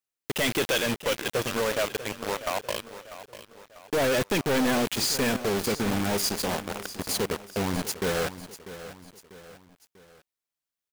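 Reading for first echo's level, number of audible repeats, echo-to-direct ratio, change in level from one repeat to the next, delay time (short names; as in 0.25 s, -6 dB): -14.0 dB, 3, -13.0 dB, -7.0 dB, 0.644 s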